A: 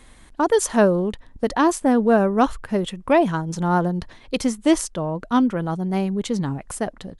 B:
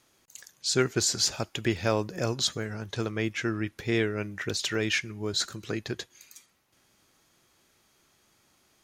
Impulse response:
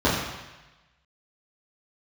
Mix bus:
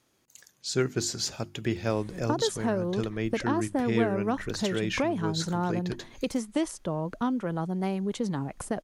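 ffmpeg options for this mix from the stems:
-filter_complex "[0:a]acrossover=split=410|1000[a][b][c];[a]acompressor=threshold=-34dB:ratio=4[d];[b]acompressor=threshold=-32dB:ratio=4[e];[c]acompressor=threshold=-35dB:ratio=4[f];[d][e][f]amix=inputs=3:normalize=0,adelay=1900,volume=-4dB[g];[1:a]bandreject=f=50:t=h:w=6,bandreject=f=100:t=h:w=6,bandreject=f=150:t=h:w=6,bandreject=f=200:t=h:w=6,bandreject=f=250:t=h:w=6,bandreject=f=300:t=h:w=6,bandreject=f=350:t=h:w=6,volume=-5.5dB[h];[g][h]amix=inputs=2:normalize=0,equalizer=f=180:w=0.4:g=6.5"

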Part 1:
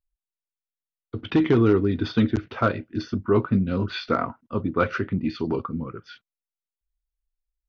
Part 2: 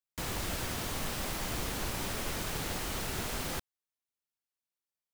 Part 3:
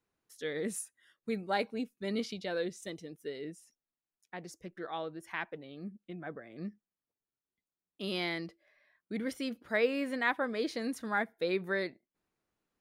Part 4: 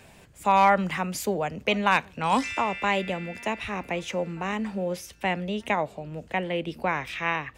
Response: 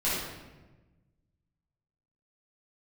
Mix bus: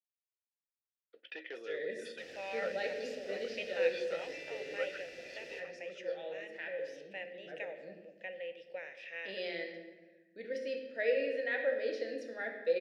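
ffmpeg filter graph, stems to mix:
-filter_complex "[0:a]highpass=790,volume=-3dB[a];[1:a]adelay=2000,volume=-5dB,asplit=2[b][c];[c]volume=-12.5dB[d];[2:a]adelay=1250,volume=2.5dB,asplit=2[e][f];[f]volume=-10.5dB[g];[3:a]lowshelf=f=430:g=-11.5,adelay=1900,volume=-6dB,asplit=2[h][i];[i]volume=-18dB[j];[4:a]atrim=start_sample=2205[k];[d][g][j]amix=inputs=3:normalize=0[l];[l][k]afir=irnorm=-1:irlink=0[m];[a][b][e][h][m]amix=inputs=5:normalize=0,asplit=3[n][o][p];[n]bandpass=f=530:t=q:w=8,volume=0dB[q];[o]bandpass=f=1.84k:t=q:w=8,volume=-6dB[r];[p]bandpass=f=2.48k:t=q:w=8,volume=-9dB[s];[q][r][s]amix=inputs=3:normalize=0,equalizer=f=5.3k:t=o:w=0.78:g=13"

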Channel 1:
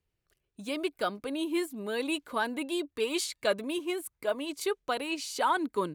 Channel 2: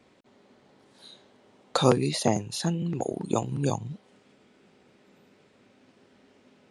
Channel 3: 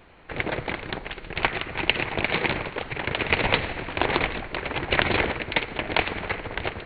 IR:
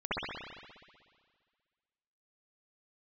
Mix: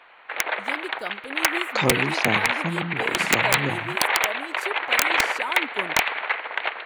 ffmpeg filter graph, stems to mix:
-filter_complex "[0:a]volume=-3.5dB[a];[1:a]afwtdn=0.0158,volume=-1.5dB[b];[2:a]highpass=850,asplit=2[c][d];[d]highpass=f=720:p=1,volume=13dB,asoftclip=type=tanh:threshold=-1dB[e];[c][e]amix=inputs=2:normalize=0,lowpass=f=1.7k:p=1,volume=-6dB,volume=1.5dB[f];[a][b][f]amix=inputs=3:normalize=0,aeval=exprs='(mod(2.24*val(0)+1,2)-1)/2.24':c=same"

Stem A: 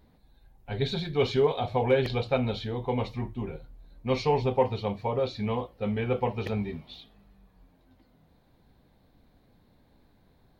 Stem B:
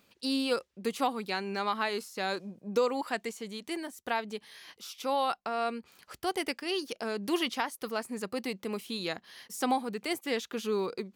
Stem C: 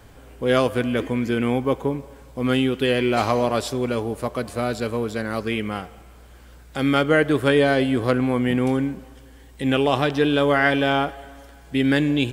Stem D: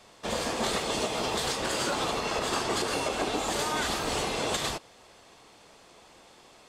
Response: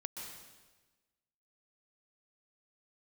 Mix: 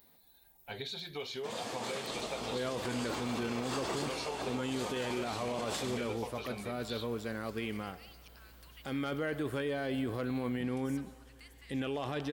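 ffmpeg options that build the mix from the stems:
-filter_complex "[0:a]aemphasis=mode=production:type=riaa,acompressor=threshold=-37dB:ratio=5,volume=-2dB,asplit=2[a][b];[1:a]acompressor=threshold=-38dB:ratio=6,highpass=f=1.1k:w=0.5412,highpass=f=1.1k:w=1.3066,adelay=1350,volume=-15dB,asplit=2[c][d];[d]volume=-4.5dB[e];[2:a]asoftclip=type=hard:threshold=-8dB,adelay=2100,volume=-11dB[f];[3:a]highpass=f=100:w=0.5412,highpass=f=100:w=1.3066,adelay=1200,volume=-9dB,asplit=2[g][h];[h]volume=-4.5dB[i];[b]apad=whole_len=347907[j];[g][j]sidechaincompress=threshold=-46dB:ratio=8:attack=16:release=310[k];[4:a]atrim=start_sample=2205[l];[e][i]amix=inputs=2:normalize=0[m];[m][l]afir=irnorm=-1:irlink=0[n];[a][c][f][k][n]amix=inputs=5:normalize=0,alimiter=level_in=2.5dB:limit=-24dB:level=0:latency=1:release=13,volume=-2.5dB"

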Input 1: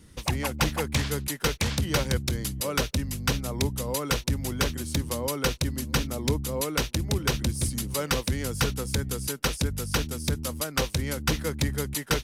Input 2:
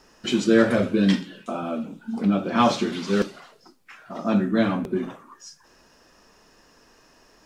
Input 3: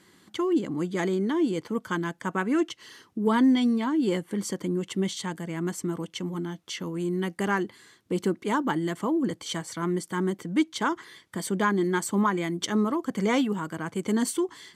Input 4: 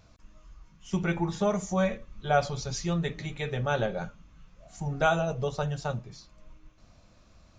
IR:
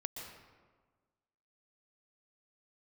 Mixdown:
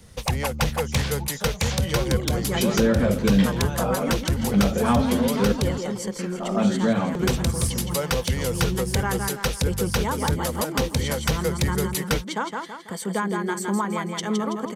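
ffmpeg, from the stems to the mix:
-filter_complex "[0:a]acontrast=33,volume=-1.5dB,asplit=3[a][b][c];[a]atrim=end=5.78,asetpts=PTS-STARTPTS,afade=t=out:st=5.776:d=0.004:c=hsin[d];[b]atrim=start=5.78:end=7.19,asetpts=PTS-STARTPTS,volume=0[e];[c]atrim=start=7.19,asetpts=PTS-STARTPTS,afade=t=in:d=0.004:c=hsin[f];[d][e][f]concat=n=3:v=0:a=1[g];[1:a]acrossover=split=3800[h][i];[i]acompressor=threshold=-44dB:ratio=4:attack=1:release=60[j];[h][j]amix=inputs=2:normalize=0,adelay=2300,volume=2.5dB[k];[2:a]adelay=1550,volume=0dB,asplit=2[l][m];[m]volume=-5.5dB[n];[3:a]acompressor=threshold=-30dB:ratio=6,bass=f=250:g=-1,treble=f=4k:g=13,volume=-4dB[o];[n]aecho=0:1:164|328|492|656|820|984:1|0.43|0.185|0.0795|0.0342|0.0147[p];[g][k][l][o][p]amix=inputs=5:normalize=0,equalizer=f=315:t=o:w=0.33:g=-11,equalizer=f=500:t=o:w=0.33:g=7,equalizer=f=800:t=o:w=0.33:g=4,acrossover=split=240[q][r];[r]acompressor=threshold=-22dB:ratio=4[s];[q][s]amix=inputs=2:normalize=0"

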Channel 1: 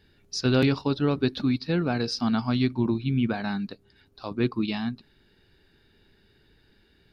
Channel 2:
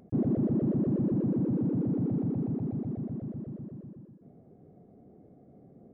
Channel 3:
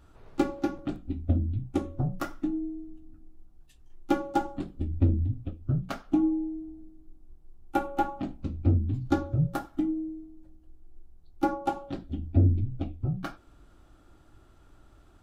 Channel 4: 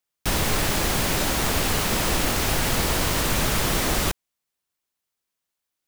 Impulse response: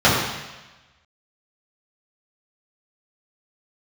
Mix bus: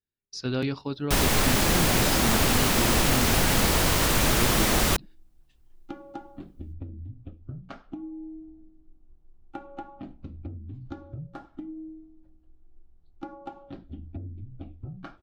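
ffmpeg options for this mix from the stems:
-filter_complex "[0:a]agate=range=-28dB:threshold=-55dB:ratio=16:detection=peak,volume=-6.5dB,asplit=2[a][b];[1:a]adelay=1250,volume=-8dB[c];[2:a]lowpass=4.1k,acompressor=threshold=-30dB:ratio=16,adelay=1800,volume=-4.5dB[d];[3:a]adelay=850,volume=0.5dB[e];[b]apad=whole_len=316885[f];[c][f]sidechaingate=range=-33dB:threshold=-51dB:ratio=16:detection=peak[g];[a][g][d][e]amix=inputs=4:normalize=0"

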